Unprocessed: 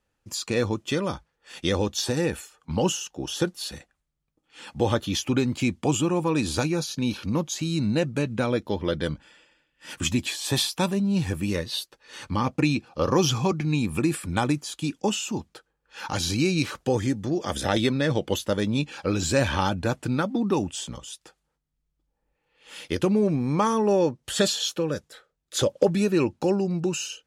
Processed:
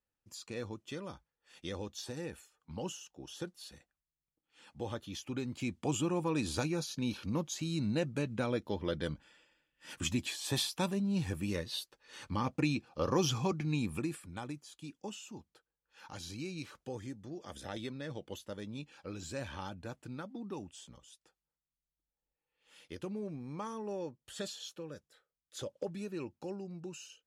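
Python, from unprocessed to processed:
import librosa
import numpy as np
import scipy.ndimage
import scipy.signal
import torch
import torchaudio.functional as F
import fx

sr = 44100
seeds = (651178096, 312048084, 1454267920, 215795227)

y = fx.gain(x, sr, db=fx.line((5.2, -16.5), (6.03, -9.0), (13.87, -9.0), (14.31, -18.5)))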